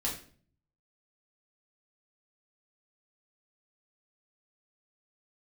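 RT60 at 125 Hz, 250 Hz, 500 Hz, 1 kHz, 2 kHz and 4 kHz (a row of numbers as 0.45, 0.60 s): 0.95, 0.70, 0.50, 0.40, 0.40, 0.40 s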